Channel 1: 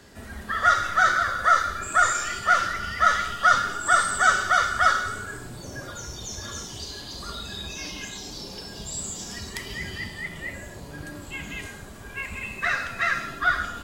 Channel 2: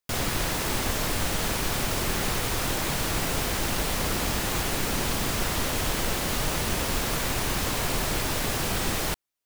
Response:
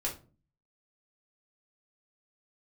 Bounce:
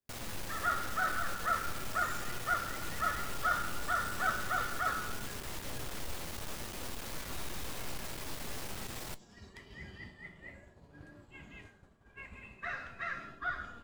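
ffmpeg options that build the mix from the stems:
-filter_complex "[0:a]lowpass=f=1800:p=1,agate=range=0.0224:threshold=0.02:ratio=3:detection=peak,volume=0.422[s0];[1:a]aeval=exprs='(tanh(44.7*val(0)+0.6)-tanh(0.6))/44.7':c=same,volume=0.668,asplit=2[s1][s2];[s2]volume=0.0841[s3];[2:a]atrim=start_sample=2205[s4];[s3][s4]afir=irnorm=-1:irlink=0[s5];[s0][s1][s5]amix=inputs=3:normalize=0,flanger=delay=8.1:depth=8.2:regen=76:speed=0.44:shape=sinusoidal"

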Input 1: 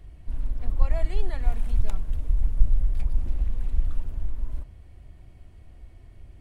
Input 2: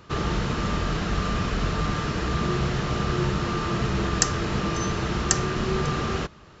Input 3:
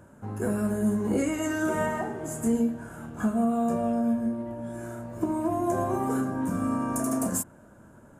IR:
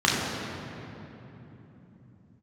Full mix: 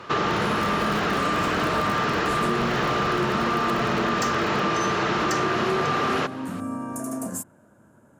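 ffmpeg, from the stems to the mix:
-filter_complex "[0:a]acrusher=bits=3:mix=0:aa=0.000001,volume=0.398[s0];[1:a]asplit=2[s1][s2];[s2]highpass=f=720:p=1,volume=22.4,asoftclip=type=tanh:threshold=1[s3];[s1][s3]amix=inputs=2:normalize=0,lowpass=f=1700:p=1,volume=0.501,volume=0.501[s4];[2:a]volume=0.708[s5];[s0][s4][s5]amix=inputs=3:normalize=0,highpass=90,acompressor=threshold=0.1:ratio=6"

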